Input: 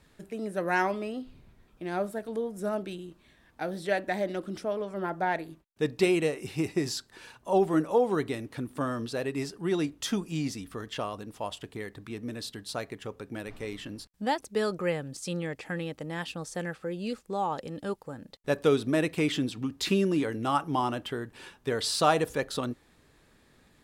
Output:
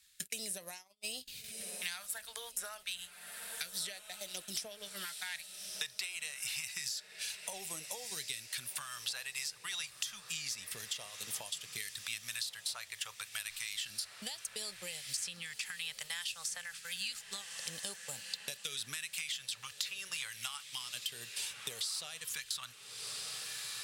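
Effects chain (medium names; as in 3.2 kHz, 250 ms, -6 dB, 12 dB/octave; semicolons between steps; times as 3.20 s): amplifier tone stack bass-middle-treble 10-0-10; compression 10:1, threshold -48 dBFS, peak gain reduction 21 dB; phase shifter stages 2, 0.29 Hz, lowest notch 240–1500 Hz; gate -59 dBFS, range -40 dB; tilt EQ +3 dB/octave; on a send: echo that smears into a reverb 1311 ms, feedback 57%, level -16 dB; on the sum: three bands compressed up and down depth 100%; trim +7 dB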